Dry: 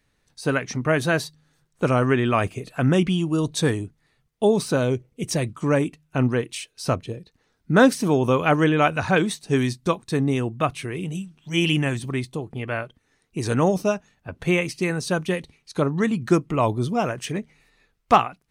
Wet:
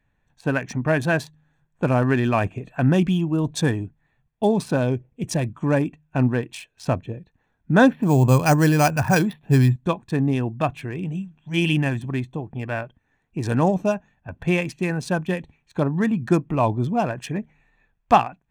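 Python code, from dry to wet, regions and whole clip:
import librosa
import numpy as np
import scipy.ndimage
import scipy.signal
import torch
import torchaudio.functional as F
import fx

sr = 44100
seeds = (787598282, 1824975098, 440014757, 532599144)

y = fx.chain(x, sr, fx.peak_eq(hz=130.0, db=9.5, octaves=0.4),
    fx.resample_bad(factor=6, down='filtered', up='hold'), at=(7.9, 9.76))
y = fx.wiener(y, sr, points=9)
y = y + 0.45 * np.pad(y, (int(1.2 * sr / 1000.0), 0))[:len(y)]
y = fx.dynamic_eq(y, sr, hz=340.0, q=0.8, threshold_db=-35.0, ratio=4.0, max_db=4)
y = F.gain(torch.from_numpy(y), -1.5).numpy()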